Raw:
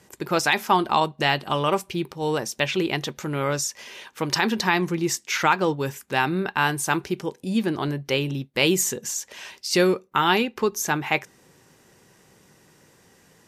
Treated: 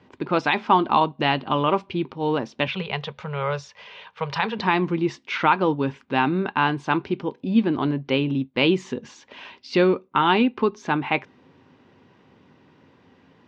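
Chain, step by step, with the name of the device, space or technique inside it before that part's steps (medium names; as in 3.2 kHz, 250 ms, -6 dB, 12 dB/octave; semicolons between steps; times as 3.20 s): 2.67–4.59 s: Chebyshev band-stop 200–430 Hz, order 3; guitar cabinet (cabinet simulation 76–3600 Hz, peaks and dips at 90 Hz +7 dB, 260 Hz +10 dB, 1 kHz +4 dB, 1.8 kHz -4 dB)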